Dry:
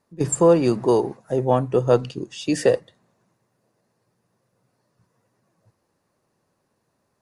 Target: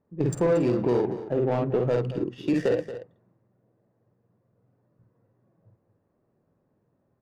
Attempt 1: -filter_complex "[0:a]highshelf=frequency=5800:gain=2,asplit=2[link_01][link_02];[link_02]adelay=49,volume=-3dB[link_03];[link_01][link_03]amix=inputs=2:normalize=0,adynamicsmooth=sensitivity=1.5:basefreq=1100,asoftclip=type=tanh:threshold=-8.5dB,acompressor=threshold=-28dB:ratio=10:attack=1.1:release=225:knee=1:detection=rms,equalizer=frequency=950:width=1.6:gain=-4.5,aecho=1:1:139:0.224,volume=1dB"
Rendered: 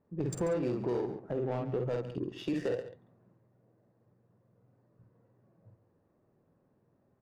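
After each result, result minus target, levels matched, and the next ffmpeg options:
downward compressor: peak gain reduction +9 dB; echo 90 ms early; 8,000 Hz band +5.0 dB
-filter_complex "[0:a]highshelf=frequency=5800:gain=2,asplit=2[link_01][link_02];[link_02]adelay=49,volume=-3dB[link_03];[link_01][link_03]amix=inputs=2:normalize=0,adynamicsmooth=sensitivity=1.5:basefreq=1100,asoftclip=type=tanh:threshold=-8.5dB,acompressor=threshold=-18dB:ratio=10:attack=1.1:release=225:knee=1:detection=rms,equalizer=frequency=950:width=1.6:gain=-4.5,aecho=1:1:139:0.224,volume=1dB"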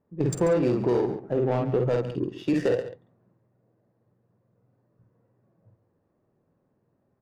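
echo 90 ms early; 8,000 Hz band +3.5 dB
-filter_complex "[0:a]highshelf=frequency=5800:gain=2,asplit=2[link_01][link_02];[link_02]adelay=49,volume=-3dB[link_03];[link_01][link_03]amix=inputs=2:normalize=0,adynamicsmooth=sensitivity=1.5:basefreq=1100,asoftclip=type=tanh:threshold=-8.5dB,acompressor=threshold=-18dB:ratio=10:attack=1.1:release=225:knee=1:detection=rms,equalizer=frequency=950:width=1.6:gain=-4.5,aecho=1:1:229:0.224,volume=1dB"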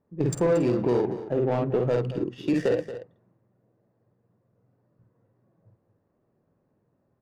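8,000 Hz band +3.0 dB
-filter_complex "[0:a]asplit=2[link_01][link_02];[link_02]adelay=49,volume=-3dB[link_03];[link_01][link_03]amix=inputs=2:normalize=0,adynamicsmooth=sensitivity=1.5:basefreq=1100,asoftclip=type=tanh:threshold=-8.5dB,acompressor=threshold=-18dB:ratio=10:attack=1.1:release=225:knee=1:detection=rms,equalizer=frequency=950:width=1.6:gain=-4.5,aecho=1:1:229:0.224,volume=1dB"

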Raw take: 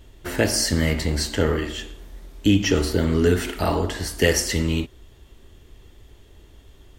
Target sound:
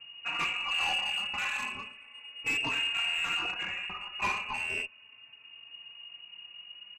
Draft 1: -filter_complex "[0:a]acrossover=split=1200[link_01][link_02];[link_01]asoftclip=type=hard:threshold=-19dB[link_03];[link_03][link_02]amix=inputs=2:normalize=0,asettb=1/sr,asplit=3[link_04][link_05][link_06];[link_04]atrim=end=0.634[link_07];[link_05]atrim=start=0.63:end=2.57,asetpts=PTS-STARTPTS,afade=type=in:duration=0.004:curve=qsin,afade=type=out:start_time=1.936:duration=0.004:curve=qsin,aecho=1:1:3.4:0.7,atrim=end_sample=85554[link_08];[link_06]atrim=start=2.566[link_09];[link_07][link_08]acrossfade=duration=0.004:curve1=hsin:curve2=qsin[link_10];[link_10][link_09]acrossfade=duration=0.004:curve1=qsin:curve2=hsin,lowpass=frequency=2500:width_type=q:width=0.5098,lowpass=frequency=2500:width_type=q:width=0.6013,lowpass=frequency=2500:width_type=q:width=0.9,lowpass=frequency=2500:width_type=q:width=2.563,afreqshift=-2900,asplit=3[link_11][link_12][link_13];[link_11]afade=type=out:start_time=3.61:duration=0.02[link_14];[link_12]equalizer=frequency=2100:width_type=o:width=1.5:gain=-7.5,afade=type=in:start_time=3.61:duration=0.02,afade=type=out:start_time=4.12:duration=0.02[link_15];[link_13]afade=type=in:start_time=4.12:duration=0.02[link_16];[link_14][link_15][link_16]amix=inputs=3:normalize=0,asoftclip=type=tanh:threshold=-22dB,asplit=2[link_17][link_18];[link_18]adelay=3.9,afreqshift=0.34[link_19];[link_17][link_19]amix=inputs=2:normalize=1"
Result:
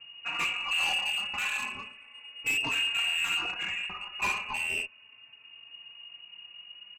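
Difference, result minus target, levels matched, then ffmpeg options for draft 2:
hard clipping: distortion −4 dB
-filter_complex "[0:a]acrossover=split=1200[link_01][link_02];[link_01]asoftclip=type=hard:threshold=-25dB[link_03];[link_03][link_02]amix=inputs=2:normalize=0,asettb=1/sr,asplit=3[link_04][link_05][link_06];[link_04]atrim=end=0.634[link_07];[link_05]atrim=start=0.63:end=2.57,asetpts=PTS-STARTPTS,afade=type=in:duration=0.004:curve=qsin,afade=type=out:start_time=1.936:duration=0.004:curve=qsin,aecho=1:1:3.4:0.7,atrim=end_sample=85554[link_08];[link_06]atrim=start=2.566[link_09];[link_07][link_08]acrossfade=duration=0.004:curve1=hsin:curve2=qsin[link_10];[link_10][link_09]acrossfade=duration=0.004:curve1=qsin:curve2=hsin,lowpass=frequency=2500:width_type=q:width=0.5098,lowpass=frequency=2500:width_type=q:width=0.6013,lowpass=frequency=2500:width_type=q:width=0.9,lowpass=frequency=2500:width_type=q:width=2.563,afreqshift=-2900,asplit=3[link_11][link_12][link_13];[link_11]afade=type=out:start_time=3.61:duration=0.02[link_14];[link_12]equalizer=frequency=2100:width_type=o:width=1.5:gain=-7.5,afade=type=in:start_time=3.61:duration=0.02,afade=type=out:start_time=4.12:duration=0.02[link_15];[link_13]afade=type=in:start_time=4.12:duration=0.02[link_16];[link_14][link_15][link_16]amix=inputs=3:normalize=0,asoftclip=type=tanh:threshold=-22dB,asplit=2[link_17][link_18];[link_18]adelay=3.9,afreqshift=0.34[link_19];[link_17][link_19]amix=inputs=2:normalize=1"

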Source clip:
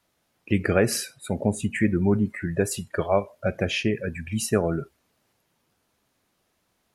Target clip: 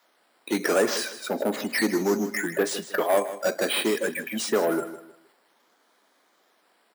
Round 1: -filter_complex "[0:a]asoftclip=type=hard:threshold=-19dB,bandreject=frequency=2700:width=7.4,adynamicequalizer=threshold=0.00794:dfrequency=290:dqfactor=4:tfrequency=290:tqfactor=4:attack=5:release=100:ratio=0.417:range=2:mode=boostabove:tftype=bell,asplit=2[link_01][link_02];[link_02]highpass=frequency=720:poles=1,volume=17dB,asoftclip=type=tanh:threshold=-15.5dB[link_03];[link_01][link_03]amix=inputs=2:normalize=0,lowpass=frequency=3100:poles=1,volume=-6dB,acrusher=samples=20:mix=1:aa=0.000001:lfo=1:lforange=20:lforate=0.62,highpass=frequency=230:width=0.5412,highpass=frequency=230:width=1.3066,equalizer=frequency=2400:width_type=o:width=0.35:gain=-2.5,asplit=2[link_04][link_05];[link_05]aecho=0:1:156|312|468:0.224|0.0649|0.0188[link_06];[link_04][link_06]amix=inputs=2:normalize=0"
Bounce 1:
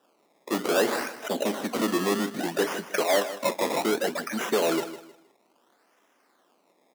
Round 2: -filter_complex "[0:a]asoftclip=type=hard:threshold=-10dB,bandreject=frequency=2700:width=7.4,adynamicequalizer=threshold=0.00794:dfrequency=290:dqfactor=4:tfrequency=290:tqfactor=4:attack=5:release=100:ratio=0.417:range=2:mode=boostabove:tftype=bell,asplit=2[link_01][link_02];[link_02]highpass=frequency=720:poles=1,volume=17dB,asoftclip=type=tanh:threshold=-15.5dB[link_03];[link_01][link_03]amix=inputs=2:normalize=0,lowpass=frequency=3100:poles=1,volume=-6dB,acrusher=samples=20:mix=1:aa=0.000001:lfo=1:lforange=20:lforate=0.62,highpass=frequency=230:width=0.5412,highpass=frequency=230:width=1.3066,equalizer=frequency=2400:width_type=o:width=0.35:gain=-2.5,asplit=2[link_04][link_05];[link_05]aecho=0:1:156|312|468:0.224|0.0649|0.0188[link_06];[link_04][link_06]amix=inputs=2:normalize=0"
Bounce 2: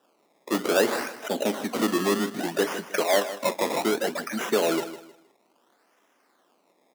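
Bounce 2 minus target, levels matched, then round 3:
sample-and-hold swept by an LFO: distortion +9 dB
-filter_complex "[0:a]asoftclip=type=hard:threshold=-10dB,bandreject=frequency=2700:width=7.4,adynamicequalizer=threshold=0.00794:dfrequency=290:dqfactor=4:tfrequency=290:tqfactor=4:attack=5:release=100:ratio=0.417:range=2:mode=boostabove:tftype=bell,asplit=2[link_01][link_02];[link_02]highpass=frequency=720:poles=1,volume=17dB,asoftclip=type=tanh:threshold=-15.5dB[link_03];[link_01][link_03]amix=inputs=2:normalize=0,lowpass=frequency=3100:poles=1,volume=-6dB,acrusher=samples=5:mix=1:aa=0.000001:lfo=1:lforange=5:lforate=0.62,highpass=frequency=230:width=0.5412,highpass=frequency=230:width=1.3066,equalizer=frequency=2400:width_type=o:width=0.35:gain=-2.5,asplit=2[link_04][link_05];[link_05]aecho=0:1:156|312|468:0.224|0.0649|0.0188[link_06];[link_04][link_06]amix=inputs=2:normalize=0"

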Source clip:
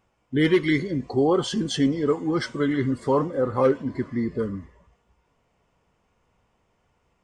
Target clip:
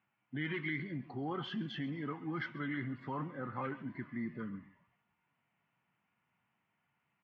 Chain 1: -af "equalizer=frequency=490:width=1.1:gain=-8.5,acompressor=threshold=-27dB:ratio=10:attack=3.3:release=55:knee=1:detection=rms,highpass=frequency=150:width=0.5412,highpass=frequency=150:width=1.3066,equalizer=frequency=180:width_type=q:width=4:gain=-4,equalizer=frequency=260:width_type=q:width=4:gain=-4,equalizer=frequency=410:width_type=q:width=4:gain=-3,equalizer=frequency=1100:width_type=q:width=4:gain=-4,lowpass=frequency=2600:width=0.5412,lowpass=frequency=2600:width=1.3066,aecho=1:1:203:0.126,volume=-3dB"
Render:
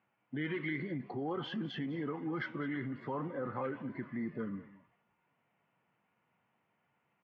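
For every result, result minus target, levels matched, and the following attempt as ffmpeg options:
echo 68 ms late; 500 Hz band +3.5 dB
-af "equalizer=frequency=490:width=1.1:gain=-8.5,acompressor=threshold=-27dB:ratio=10:attack=3.3:release=55:knee=1:detection=rms,highpass=frequency=150:width=0.5412,highpass=frequency=150:width=1.3066,equalizer=frequency=180:width_type=q:width=4:gain=-4,equalizer=frequency=260:width_type=q:width=4:gain=-4,equalizer=frequency=410:width_type=q:width=4:gain=-3,equalizer=frequency=1100:width_type=q:width=4:gain=-4,lowpass=frequency=2600:width=0.5412,lowpass=frequency=2600:width=1.3066,aecho=1:1:135:0.126,volume=-3dB"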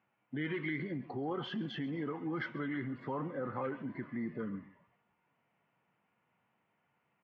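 500 Hz band +3.5 dB
-af "equalizer=frequency=490:width=1.1:gain=-19.5,acompressor=threshold=-27dB:ratio=10:attack=3.3:release=55:knee=1:detection=rms,highpass=frequency=150:width=0.5412,highpass=frequency=150:width=1.3066,equalizer=frequency=180:width_type=q:width=4:gain=-4,equalizer=frequency=260:width_type=q:width=4:gain=-4,equalizer=frequency=410:width_type=q:width=4:gain=-3,equalizer=frequency=1100:width_type=q:width=4:gain=-4,lowpass=frequency=2600:width=0.5412,lowpass=frequency=2600:width=1.3066,aecho=1:1:135:0.126,volume=-3dB"

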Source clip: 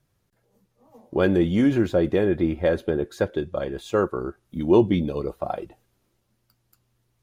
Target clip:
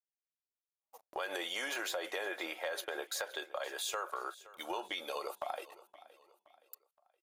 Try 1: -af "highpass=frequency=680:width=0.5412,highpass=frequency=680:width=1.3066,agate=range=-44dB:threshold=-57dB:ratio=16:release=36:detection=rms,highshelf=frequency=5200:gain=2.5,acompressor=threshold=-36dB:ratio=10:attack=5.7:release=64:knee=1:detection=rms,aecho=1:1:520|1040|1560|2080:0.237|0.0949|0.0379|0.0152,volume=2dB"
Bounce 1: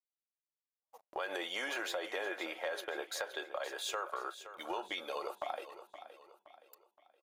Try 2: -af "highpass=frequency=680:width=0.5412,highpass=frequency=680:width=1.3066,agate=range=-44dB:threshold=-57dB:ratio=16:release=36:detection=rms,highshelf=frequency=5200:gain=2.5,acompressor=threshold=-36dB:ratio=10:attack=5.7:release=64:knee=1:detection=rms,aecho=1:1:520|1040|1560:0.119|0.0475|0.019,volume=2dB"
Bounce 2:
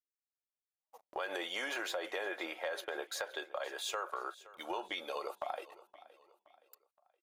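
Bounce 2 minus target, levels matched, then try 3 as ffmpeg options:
8,000 Hz band −3.5 dB
-af "highpass=frequency=680:width=0.5412,highpass=frequency=680:width=1.3066,agate=range=-44dB:threshold=-57dB:ratio=16:release=36:detection=rms,highshelf=frequency=5200:gain=12,acompressor=threshold=-36dB:ratio=10:attack=5.7:release=64:knee=1:detection=rms,aecho=1:1:520|1040|1560:0.119|0.0475|0.019,volume=2dB"

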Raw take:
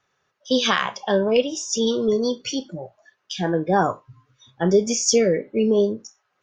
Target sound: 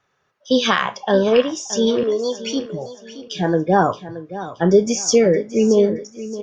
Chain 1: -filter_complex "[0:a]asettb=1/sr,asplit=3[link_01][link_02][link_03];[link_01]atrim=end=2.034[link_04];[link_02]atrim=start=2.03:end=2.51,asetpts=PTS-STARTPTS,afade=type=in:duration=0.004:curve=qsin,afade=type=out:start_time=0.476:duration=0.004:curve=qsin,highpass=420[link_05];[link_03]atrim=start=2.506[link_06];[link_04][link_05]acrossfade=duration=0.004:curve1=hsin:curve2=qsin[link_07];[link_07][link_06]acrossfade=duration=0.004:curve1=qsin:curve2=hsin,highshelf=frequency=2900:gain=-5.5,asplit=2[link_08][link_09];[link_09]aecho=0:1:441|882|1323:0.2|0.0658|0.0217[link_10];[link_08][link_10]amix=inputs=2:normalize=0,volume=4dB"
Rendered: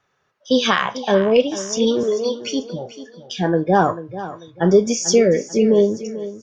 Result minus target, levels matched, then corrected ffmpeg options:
echo 182 ms early
-filter_complex "[0:a]asettb=1/sr,asplit=3[link_01][link_02][link_03];[link_01]atrim=end=2.034[link_04];[link_02]atrim=start=2.03:end=2.51,asetpts=PTS-STARTPTS,afade=type=in:duration=0.004:curve=qsin,afade=type=out:start_time=0.476:duration=0.004:curve=qsin,highpass=420[link_05];[link_03]atrim=start=2.506[link_06];[link_04][link_05]acrossfade=duration=0.004:curve1=hsin:curve2=qsin[link_07];[link_07][link_06]acrossfade=duration=0.004:curve1=qsin:curve2=hsin,highshelf=frequency=2900:gain=-5.5,asplit=2[link_08][link_09];[link_09]aecho=0:1:623|1246|1869:0.2|0.0658|0.0217[link_10];[link_08][link_10]amix=inputs=2:normalize=0,volume=4dB"

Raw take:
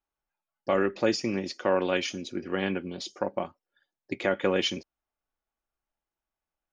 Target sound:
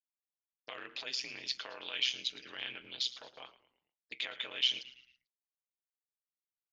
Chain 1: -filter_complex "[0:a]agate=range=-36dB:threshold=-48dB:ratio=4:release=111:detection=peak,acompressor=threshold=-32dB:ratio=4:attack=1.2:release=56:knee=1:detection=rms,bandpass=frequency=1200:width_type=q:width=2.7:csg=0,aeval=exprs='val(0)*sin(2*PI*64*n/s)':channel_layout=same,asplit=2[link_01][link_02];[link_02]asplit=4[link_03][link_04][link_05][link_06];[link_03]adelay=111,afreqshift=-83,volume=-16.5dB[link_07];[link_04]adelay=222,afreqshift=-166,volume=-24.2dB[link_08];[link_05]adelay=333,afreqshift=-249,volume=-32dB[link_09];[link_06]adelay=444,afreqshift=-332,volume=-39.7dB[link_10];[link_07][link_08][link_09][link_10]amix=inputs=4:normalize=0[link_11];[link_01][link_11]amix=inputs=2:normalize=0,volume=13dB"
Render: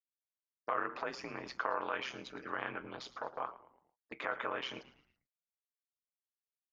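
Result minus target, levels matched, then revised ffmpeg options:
1,000 Hz band +18.5 dB
-filter_complex "[0:a]agate=range=-36dB:threshold=-48dB:ratio=4:release=111:detection=peak,acompressor=threshold=-32dB:ratio=4:attack=1.2:release=56:knee=1:detection=rms,bandpass=frequency=3400:width_type=q:width=2.7:csg=0,aeval=exprs='val(0)*sin(2*PI*64*n/s)':channel_layout=same,asplit=2[link_01][link_02];[link_02]asplit=4[link_03][link_04][link_05][link_06];[link_03]adelay=111,afreqshift=-83,volume=-16.5dB[link_07];[link_04]adelay=222,afreqshift=-166,volume=-24.2dB[link_08];[link_05]adelay=333,afreqshift=-249,volume=-32dB[link_09];[link_06]adelay=444,afreqshift=-332,volume=-39.7dB[link_10];[link_07][link_08][link_09][link_10]amix=inputs=4:normalize=0[link_11];[link_01][link_11]amix=inputs=2:normalize=0,volume=13dB"

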